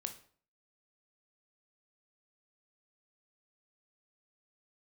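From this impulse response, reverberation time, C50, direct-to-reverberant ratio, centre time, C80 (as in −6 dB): 0.50 s, 12.0 dB, 6.5 dB, 9 ms, 16.5 dB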